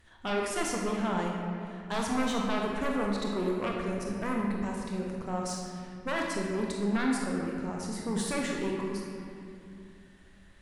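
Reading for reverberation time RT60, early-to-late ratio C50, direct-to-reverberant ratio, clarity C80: 2.5 s, 0.5 dB, -1.0 dB, 2.0 dB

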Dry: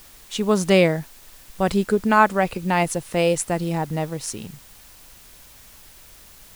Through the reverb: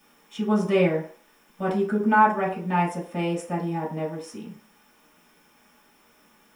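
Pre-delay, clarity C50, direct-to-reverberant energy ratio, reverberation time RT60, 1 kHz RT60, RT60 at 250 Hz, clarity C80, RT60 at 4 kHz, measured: 3 ms, 7.5 dB, -8.0 dB, 0.45 s, 0.50 s, 0.40 s, 12.5 dB, 0.45 s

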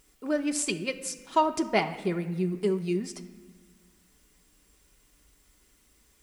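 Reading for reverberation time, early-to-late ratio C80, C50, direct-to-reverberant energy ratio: 1.4 s, 14.0 dB, 12.5 dB, 5.0 dB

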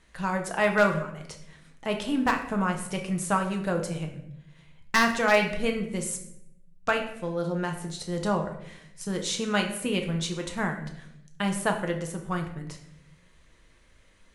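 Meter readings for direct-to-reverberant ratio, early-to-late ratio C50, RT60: 3.0 dB, 9.0 dB, 0.75 s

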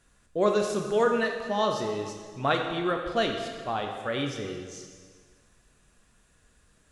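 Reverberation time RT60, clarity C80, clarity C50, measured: 1.7 s, 6.0 dB, 4.5 dB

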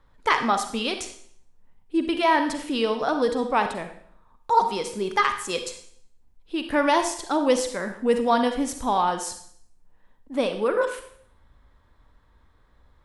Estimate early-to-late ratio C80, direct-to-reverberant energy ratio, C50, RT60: 11.5 dB, 7.0 dB, 8.5 dB, 0.60 s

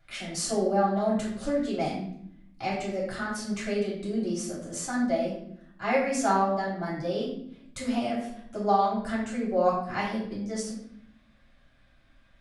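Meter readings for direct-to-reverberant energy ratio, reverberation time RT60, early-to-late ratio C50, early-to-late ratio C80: -7.0 dB, 0.70 s, 3.0 dB, 6.5 dB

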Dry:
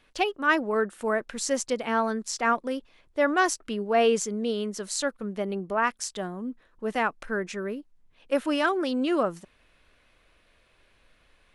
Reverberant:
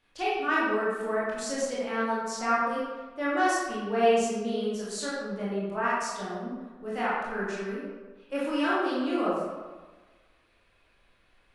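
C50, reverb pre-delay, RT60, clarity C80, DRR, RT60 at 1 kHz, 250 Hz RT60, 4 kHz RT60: -2.0 dB, 19 ms, 1.3 s, 1.0 dB, -8.5 dB, 1.4 s, 1.3 s, 0.80 s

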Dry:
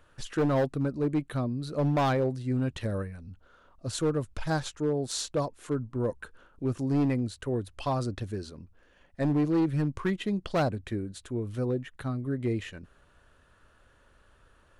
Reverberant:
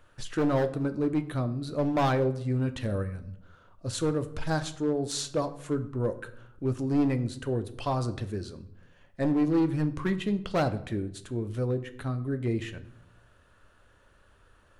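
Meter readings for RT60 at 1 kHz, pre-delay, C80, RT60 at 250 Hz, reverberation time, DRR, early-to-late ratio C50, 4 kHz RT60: 0.70 s, 10 ms, 17.5 dB, 1.0 s, 0.75 s, 9.0 dB, 14.5 dB, 0.50 s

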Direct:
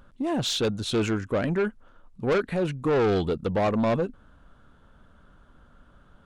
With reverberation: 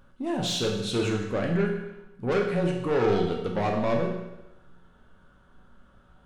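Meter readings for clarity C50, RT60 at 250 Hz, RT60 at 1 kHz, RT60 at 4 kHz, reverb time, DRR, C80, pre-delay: 4.5 dB, 0.95 s, 0.95 s, 0.90 s, 0.95 s, -0.5 dB, 6.5 dB, 5 ms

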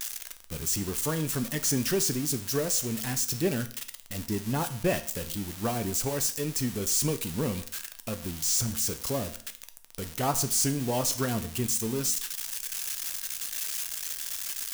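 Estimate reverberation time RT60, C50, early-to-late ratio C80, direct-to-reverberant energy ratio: 0.55 s, 14.0 dB, 17.0 dB, 8.0 dB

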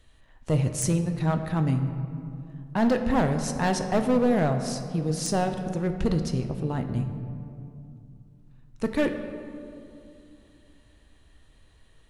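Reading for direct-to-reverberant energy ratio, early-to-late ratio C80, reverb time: 6.0 dB, 9.0 dB, 2.6 s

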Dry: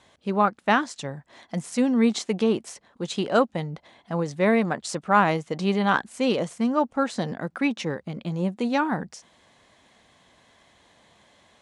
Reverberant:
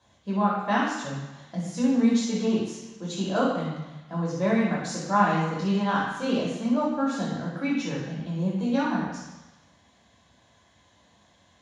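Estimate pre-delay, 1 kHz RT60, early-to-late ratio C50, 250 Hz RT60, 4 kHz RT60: 3 ms, 1.1 s, 0.5 dB, 1.0 s, 1.1 s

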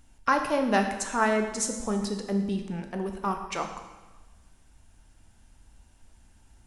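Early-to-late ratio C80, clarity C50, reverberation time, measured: 9.0 dB, 7.0 dB, 1.2 s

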